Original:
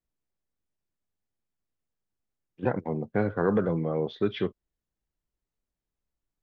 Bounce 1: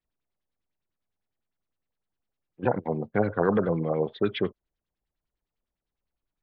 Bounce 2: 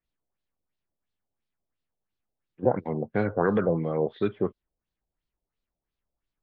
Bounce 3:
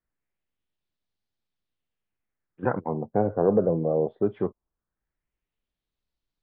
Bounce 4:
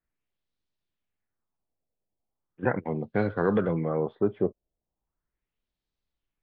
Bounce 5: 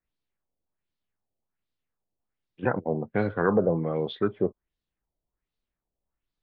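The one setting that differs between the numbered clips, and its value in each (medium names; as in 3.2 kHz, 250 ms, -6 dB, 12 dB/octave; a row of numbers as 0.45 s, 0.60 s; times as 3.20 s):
LFO low-pass, rate: 9.9 Hz, 2.9 Hz, 0.2 Hz, 0.38 Hz, 1.3 Hz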